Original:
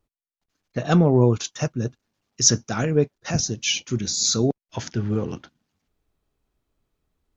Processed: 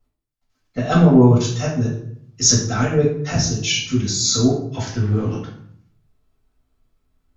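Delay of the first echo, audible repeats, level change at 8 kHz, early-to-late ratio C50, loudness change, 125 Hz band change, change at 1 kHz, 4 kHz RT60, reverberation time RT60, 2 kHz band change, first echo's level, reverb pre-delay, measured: none, none, n/a, 5.0 dB, +4.5 dB, +5.5 dB, +5.0 dB, 0.45 s, 0.65 s, +4.5 dB, none, 3 ms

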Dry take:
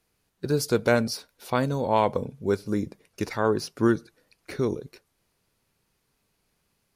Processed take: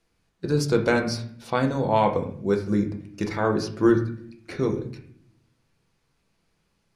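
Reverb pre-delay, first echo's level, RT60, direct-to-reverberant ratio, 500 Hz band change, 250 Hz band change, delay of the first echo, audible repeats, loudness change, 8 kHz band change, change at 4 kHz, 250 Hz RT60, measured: 6 ms, none, 0.60 s, 3.0 dB, +1.5 dB, +3.0 dB, none, none, +2.0 dB, -2.0 dB, 0.0 dB, 1.1 s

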